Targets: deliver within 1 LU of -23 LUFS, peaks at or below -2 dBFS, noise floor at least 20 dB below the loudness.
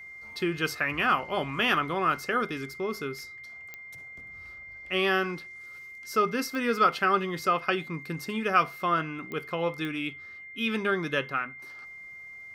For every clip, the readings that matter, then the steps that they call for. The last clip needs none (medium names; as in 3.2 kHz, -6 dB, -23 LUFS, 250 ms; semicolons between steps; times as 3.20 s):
clicks found 4; steady tone 2.1 kHz; tone level -42 dBFS; loudness -28.0 LUFS; peak level -9.5 dBFS; loudness target -23.0 LUFS
-> de-click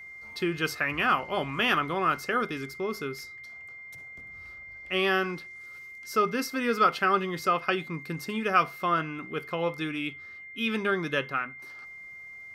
clicks found 0; steady tone 2.1 kHz; tone level -42 dBFS
-> band-stop 2.1 kHz, Q 30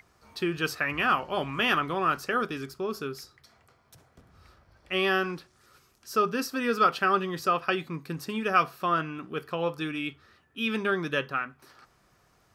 steady tone not found; loudness -28.0 LUFS; peak level -9.0 dBFS; loudness target -23.0 LUFS
-> trim +5 dB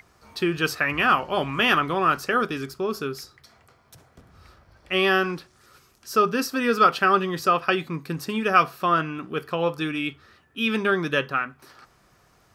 loudness -23.0 LUFS; peak level -4.0 dBFS; noise floor -60 dBFS